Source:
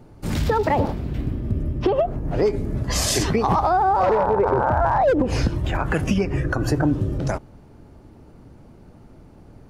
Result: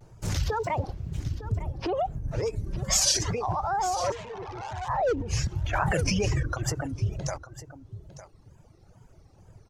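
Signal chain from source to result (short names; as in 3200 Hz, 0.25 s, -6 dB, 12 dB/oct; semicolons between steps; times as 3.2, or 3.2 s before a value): limiter -14.5 dBFS, peak gain reduction 5 dB; 4.11–4.89 tube stage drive 28 dB, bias 0.3; fifteen-band EQ 100 Hz +6 dB, 250 Hz -11 dB, 6300 Hz +11 dB; wow and flutter 140 cents; reverb removal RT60 2 s; 2.66–3.12 comb 5.2 ms, depth 80%; on a send: echo 0.904 s -14.5 dB; 5.73–6.43 on the sum: fast leveller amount 100%; gain -4.5 dB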